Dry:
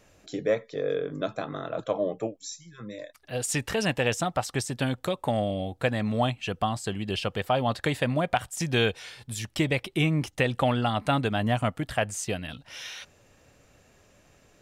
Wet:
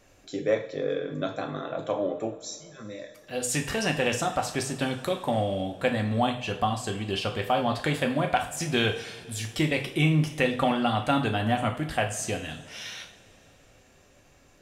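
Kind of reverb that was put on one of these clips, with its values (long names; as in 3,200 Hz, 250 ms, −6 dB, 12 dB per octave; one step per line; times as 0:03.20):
coupled-rooms reverb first 0.44 s, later 3.7 s, from −22 dB, DRR 3 dB
level −1 dB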